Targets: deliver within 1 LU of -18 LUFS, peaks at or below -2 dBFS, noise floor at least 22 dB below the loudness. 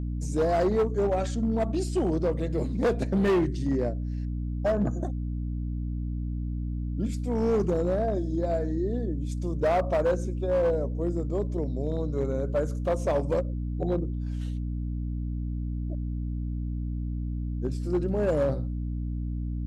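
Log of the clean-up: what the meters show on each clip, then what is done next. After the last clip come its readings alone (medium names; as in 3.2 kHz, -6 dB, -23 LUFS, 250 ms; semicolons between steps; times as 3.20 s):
clipped samples 2.4%; clipping level -19.5 dBFS; hum 60 Hz; highest harmonic 300 Hz; hum level -29 dBFS; loudness -28.5 LUFS; peak level -19.5 dBFS; loudness target -18.0 LUFS
-> clip repair -19.5 dBFS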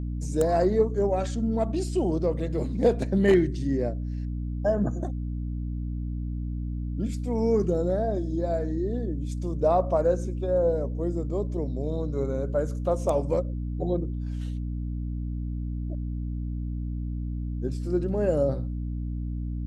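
clipped samples 0.0%; hum 60 Hz; highest harmonic 300 Hz; hum level -28 dBFS
-> de-hum 60 Hz, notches 5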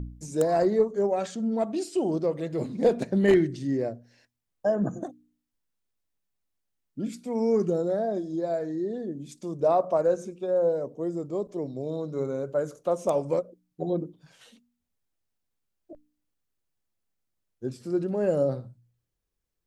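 hum not found; loudness -27.5 LUFS; peak level -10.0 dBFS; loudness target -18.0 LUFS
-> trim +9.5 dB; peak limiter -2 dBFS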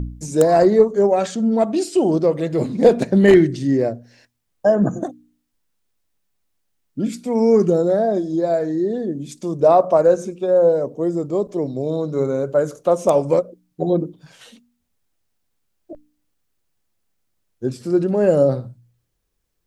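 loudness -18.0 LUFS; peak level -2.0 dBFS; noise floor -72 dBFS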